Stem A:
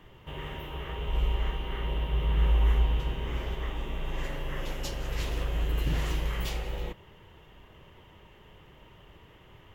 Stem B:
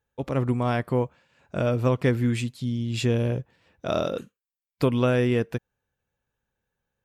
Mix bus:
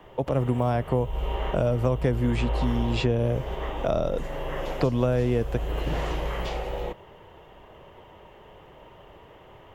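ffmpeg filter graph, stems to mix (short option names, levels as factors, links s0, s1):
-filter_complex "[0:a]volume=0.944[s0];[1:a]volume=1.33[s1];[s0][s1]amix=inputs=2:normalize=0,acrossover=split=7600[s2][s3];[s3]acompressor=threshold=0.00178:ratio=4:attack=1:release=60[s4];[s2][s4]amix=inputs=2:normalize=0,equalizer=f=650:t=o:w=1.8:g=12,acrossover=split=180|5300[s5][s6][s7];[s5]acompressor=threshold=0.0631:ratio=4[s8];[s6]acompressor=threshold=0.0501:ratio=4[s9];[s7]acompressor=threshold=0.002:ratio=4[s10];[s8][s9][s10]amix=inputs=3:normalize=0"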